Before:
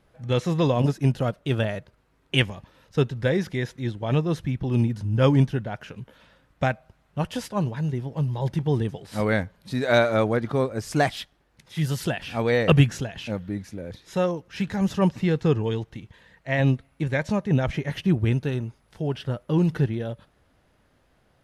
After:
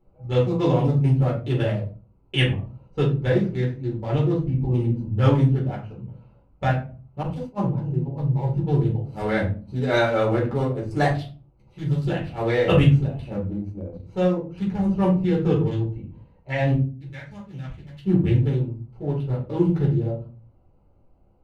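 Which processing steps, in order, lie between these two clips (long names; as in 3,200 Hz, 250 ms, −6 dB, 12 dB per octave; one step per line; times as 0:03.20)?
adaptive Wiener filter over 25 samples
0:16.74–0:18.03: guitar amp tone stack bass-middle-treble 5-5-5
rectangular room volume 200 cubic metres, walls furnished, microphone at 4.2 metres
0:07.23–0:07.70: downward expander −17 dBFS
0:13.50–0:14.03: transient designer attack −1 dB, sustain −8 dB
level −7.5 dB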